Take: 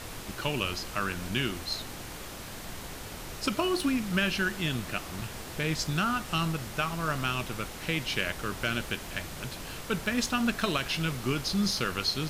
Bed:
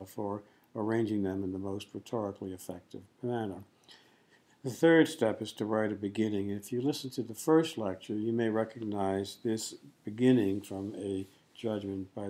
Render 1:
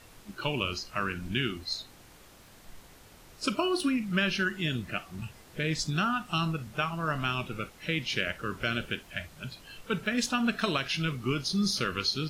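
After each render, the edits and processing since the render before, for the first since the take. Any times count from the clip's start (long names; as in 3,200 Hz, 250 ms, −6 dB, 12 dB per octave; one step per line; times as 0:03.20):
noise reduction from a noise print 13 dB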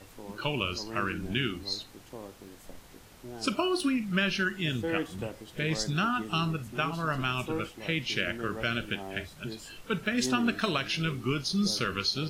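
mix in bed −9.5 dB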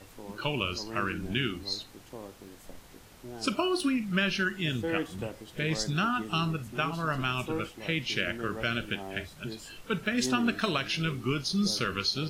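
no processing that can be heard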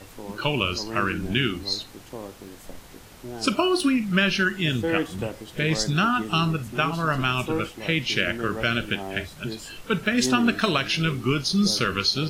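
level +6.5 dB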